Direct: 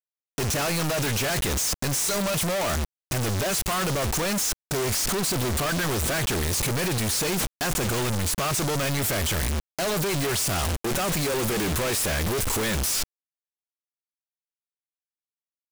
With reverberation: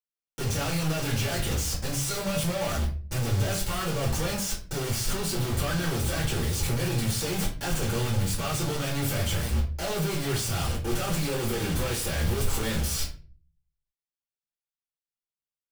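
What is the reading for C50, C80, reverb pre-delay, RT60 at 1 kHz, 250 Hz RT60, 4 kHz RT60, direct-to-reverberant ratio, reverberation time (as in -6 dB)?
8.0 dB, 13.5 dB, 4 ms, 0.35 s, 0.70 s, 0.30 s, -5.0 dB, 0.40 s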